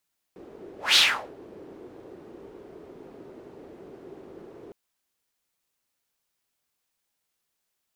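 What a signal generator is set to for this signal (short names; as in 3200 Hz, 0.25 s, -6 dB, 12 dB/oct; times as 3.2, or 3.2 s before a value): whoosh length 4.36 s, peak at 0.6, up 0.19 s, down 0.39 s, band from 380 Hz, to 3700 Hz, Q 3.5, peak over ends 28.5 dB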